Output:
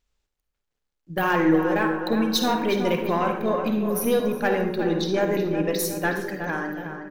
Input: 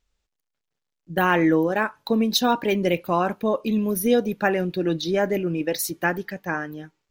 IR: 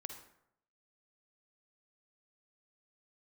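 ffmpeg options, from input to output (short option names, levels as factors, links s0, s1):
-filter_complex "[0:a]aeval=exprs='0.531*(cos(1*acos(clip(val(0)/0.531,-1,1)))-cos(1*PI/2))+0.0168*(cos(4*acos(clip(val(0)/0.531,-1,1)))-cos(4*PI/2))+0.0422*(cos(5*acos(clip(val(0)/0.531,-1,1)))-cos(5*PI/2))+0.00841*(cos(8*acos(clip(val(0)/0.531,-1,1)))-cos(8*PI/2))':c=same,asplit=2[s0][s1];[s1]adelay=366,lowpass=f=2300:p=1,volume=0.422,asplit=2[s2][s3];[s3]adelay=366,lowpass=f=2300:p=1,volume=0.54,asplit=2[s4][s5];[s5]adelay=366,lowpass=f=2300:p=1,volume=0.54,asplit=2[s6][s7];[s7]adelay=366,lowpass=f=2300:p=1,volume=0.54,asplit=2[s8][s9];[s9]adelay=366,lowpass=f=2300:p=1,volume=0.54,asplit=2[s10][s11];[s11]adelay=366,lowpass=f=2300:p=1,volume=0.54,asplit=2[s12][s13];[s13]adelay=366,lowpass=f=2300:p=1,volume=0.54[s14];[s0][s2][s4][s6][s8][s10][s12][s14]amix=inputs=8:normalize=0[s15];[1:a]atrim=start_sample=2205[s16];[s15][s16]afir=irnorm=-1:irlink=0"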